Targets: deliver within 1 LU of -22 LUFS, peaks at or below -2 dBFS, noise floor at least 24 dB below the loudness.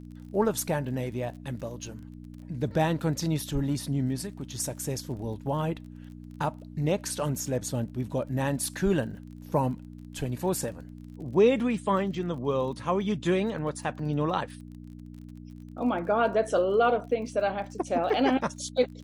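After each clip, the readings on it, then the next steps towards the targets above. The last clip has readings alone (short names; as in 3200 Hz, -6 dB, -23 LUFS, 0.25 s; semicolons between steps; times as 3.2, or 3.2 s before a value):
ticks 32/s; hum 60 Hz; harmonics up to 300 Hz; hum level -41 dBFS; loudness -29.0 LUFS; peak -11.5 dBFS; loudness target -22.0 LUFS
-> de-click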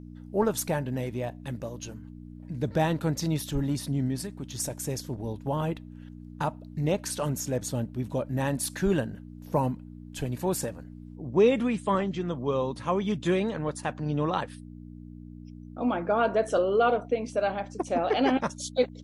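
ticks 0/s; hum 60 Hz; harmonics up to 300 Hz; hum level -41 dBFS
-> de-hum 60 Hz, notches 5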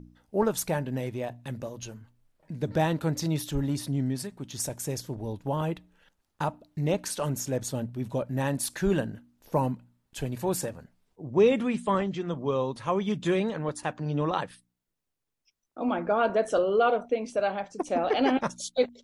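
hum none; loudness -29.0 LUFS; peak -11.5 dBFS; loudness target -22.0 LUFS
-> gain +7 dB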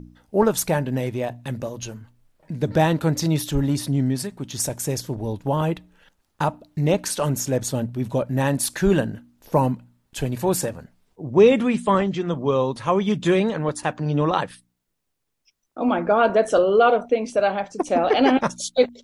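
loudness -22.0 LUFS; peak -4.5 dBFS; noise floor -73 dBFS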